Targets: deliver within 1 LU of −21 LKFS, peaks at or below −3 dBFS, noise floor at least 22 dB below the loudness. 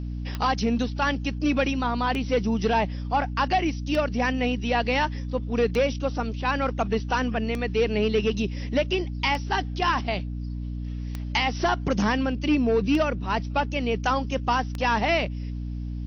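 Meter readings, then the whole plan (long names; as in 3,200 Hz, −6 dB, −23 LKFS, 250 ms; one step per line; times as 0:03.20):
number of clicks 9; mains hum 60 Hz; hum harmonics up to 300 Hz; level of the hum −29 dBFS; integrated loudness −25.5 LKFS; sample peak −10.5 dBFS; target loudness −21.0 LKFS
→ click removal
hum removal 60 Hz, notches 5
level +4.5 dB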